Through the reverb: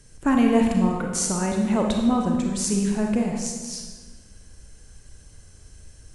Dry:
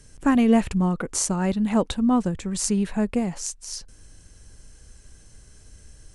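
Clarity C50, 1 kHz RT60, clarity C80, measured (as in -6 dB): 3.0 dB, 1.3 s, 5.5 dB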